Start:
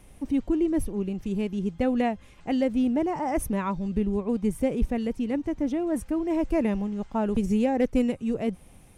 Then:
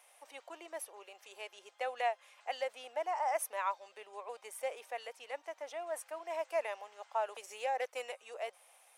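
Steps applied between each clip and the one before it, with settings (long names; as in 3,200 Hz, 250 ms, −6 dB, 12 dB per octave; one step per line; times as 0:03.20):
Butterworth high-pass 600 Hz 36 dB per octave
level −3 dB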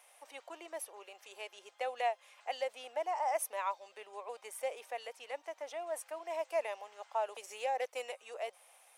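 dynamic equaliser 1,500 Hz, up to −5 dB, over −51 dBFS, Q 1.6
level +1 dB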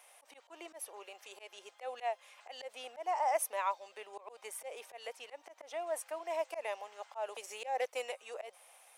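volume swells 130 ms
level +2 dB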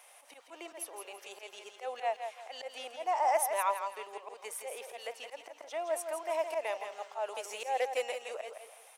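repeating echo 166 ms, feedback 30%, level −7.5 dB
level +3 dB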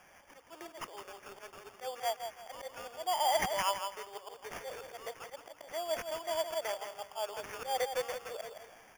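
decimation without filtering 11×
level −1.5 dB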